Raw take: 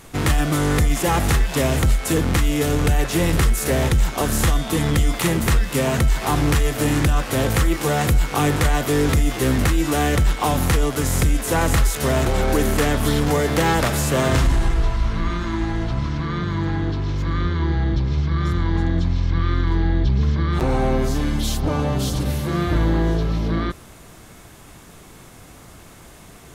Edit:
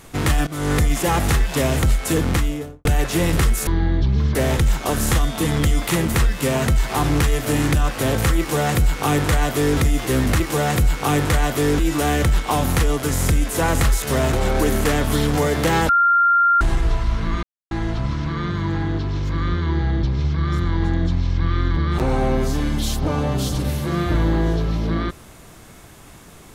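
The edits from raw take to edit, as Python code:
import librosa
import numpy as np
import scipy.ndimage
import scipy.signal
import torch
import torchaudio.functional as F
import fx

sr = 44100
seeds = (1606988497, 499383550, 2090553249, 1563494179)

y = fx.studio_fade_out(x, sr, start_s=2.29, length_s=0.56)
y = fx.edit(y, sr, fx.fade_in_from(start_s=0.47, length_s=0.25, floor_db=-19.5),
    fx.duplicate(start_s=7.71, length_s=1.39, to_s=9.72),
    fx.bleep(start_s=13.82, length_s=0.72, hz=1390.0, db=-12.0),
    fx.silence(start_s=15.36, length_s=0.28),
    fx.move(start_s=19.7, length_s=0.68, to_s=3.67), tone=tone)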